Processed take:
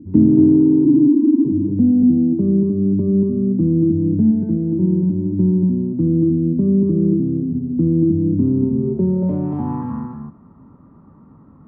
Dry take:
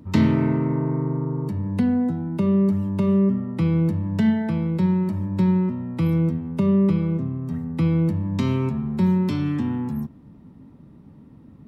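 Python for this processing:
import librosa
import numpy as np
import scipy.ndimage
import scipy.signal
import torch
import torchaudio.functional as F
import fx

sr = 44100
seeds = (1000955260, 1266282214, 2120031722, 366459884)

y = fx.sine_speech(x, sr, at=(0.85, 1.45))
y = y + 10.0 ** (-4.0 / 20.0) * np.pad(y, (int(234 * sr / 1000.0), 0))[:len(y)]
y = fx.filter_sweep_lowpass(y, sr, from_hz=310.0, to_hz=1200.0, start_s=8.72, end_s=9.98, q=4.5)
y = y * 10.0 ** (-1.0 / 20.0)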